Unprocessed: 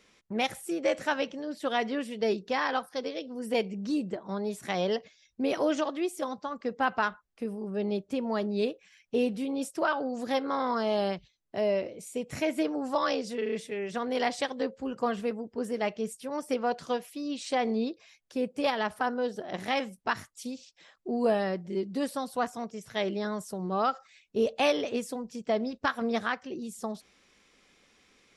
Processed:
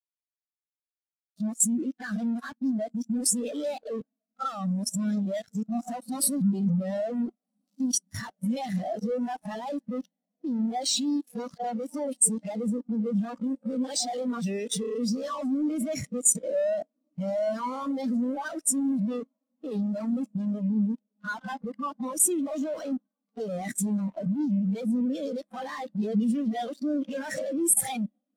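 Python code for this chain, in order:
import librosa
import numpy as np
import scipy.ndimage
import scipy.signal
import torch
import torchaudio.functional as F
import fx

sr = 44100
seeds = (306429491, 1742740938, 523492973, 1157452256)

y = np.flip(x).copy()
y = fx.peak_eq(y, sr, hz=380.0, db=-11.5, octaves=0.31)
y = fx.fuzz(y, sr, gain_db=52.0, gate_db=-47.0)
y = fx.level_steps(y, sr, step_db=10)
y = fx.high_shelf(y, sr, hz=3200.0, db=9.5)
y = fx.echo_diffused(y, sr, ms=1498, feedback_pct=58, wet_db=-16.0)
y = fx.rev_schroeder(y, sr, rt60_s=3.6, comb_ms=30, drr_db=20.0)
y = fx.power_curve(y, sr, exponent=1.4)
y = fx.spectral_expand(y, sr, expansion=2.5)
y = y * 10.0 ** (-6.5 / 20.0)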